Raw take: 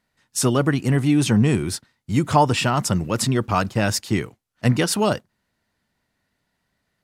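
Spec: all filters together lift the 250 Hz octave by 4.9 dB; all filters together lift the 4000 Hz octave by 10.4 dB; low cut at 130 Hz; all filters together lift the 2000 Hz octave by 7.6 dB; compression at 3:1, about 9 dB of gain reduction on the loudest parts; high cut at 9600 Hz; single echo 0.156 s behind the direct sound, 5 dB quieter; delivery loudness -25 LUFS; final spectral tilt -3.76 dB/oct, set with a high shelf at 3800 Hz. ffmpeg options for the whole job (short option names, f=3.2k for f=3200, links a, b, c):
-af "highpass=130,lowpass=9.6k,equalizer=f=250:t=o:g=6.5,equalizer=f=2k:t=o:g=6,highshelf=f=3.8k:g=5.5,equalizer=f=4k:t=o:g=8.5,acompressor=threshold=-22dB:ratio=3,aecho=1:1:156:0.562,volume=-2dB"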